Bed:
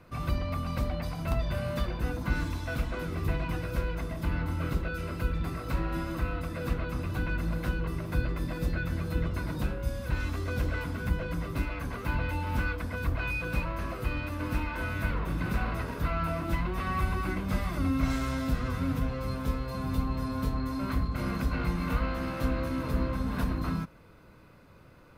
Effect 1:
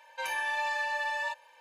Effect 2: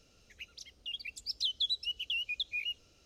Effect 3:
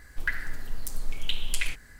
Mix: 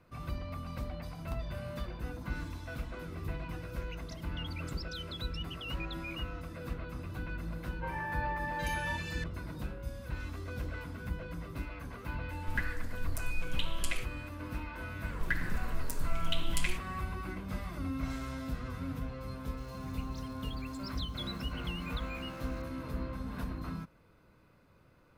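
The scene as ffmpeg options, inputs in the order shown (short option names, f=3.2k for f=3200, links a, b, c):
-filter_complex "[2:a]asplit=2[a][b];[3:a]asplit=2[c][d];[0:a]volume=-8.5dB[e];[a]alimiter=level_in=10dB:limit=-24dB:level=0:latency=1:release=71,volume=-10dB[f];[1:a]acrossover=split=1900[g][h];[h]adelay=770[i];[g][i]amix=inputs=2:normalize=0[j];[c]aresample=32000,aresample=44100[k];[d]acontrast=81[l];[b]aeval=exprs='val(0)+0.5*0.00562*sgn(val(0))':c=same[m];[f]atrim=end=3.05,asetpts=PTS-STARTPTS,volume=-4.5dB,afade=t=in:d=0.004:c=hsin,afade=t=out:st=3.046:d=0.004:c=hsin,adelay=3510[n];[j]atrim=end=1.6,asetpts=PTS-STARTPTS,volume=-3dB,afade=t=in:d=0.004:c=hsin,afade=t=out:st=1.596:d=0.004:c=hsin,adelay=7640[o];[k]atrim=end=1.99,asetpts=PTS-STARTPTS,volume=-6.5dB,afade=t=in:d=0.004:c=hsin,afade=t=out:st=1.986:d=0.004:c=hsin,adelay=12300[p];[l]atrim=end=1.99,asetpts=PTS-STARTPTS,volume=-11dB,afade=t=in:d=0.004:c=hsin,afade=t=out:st=1.986:d=0.004:c=hsin,adelay=15030[q];[m]atrim=end=3.05,asetpts=PTS-STARTPTS,volume=-11.5dB,afade=t=in:d=0.004:c=hsin,afade=t=out:st=3.046:d=0.004:c=hsin,adelay=19570[r];[e][n][o][p][q][r]amix=inputs=6:normalize=0"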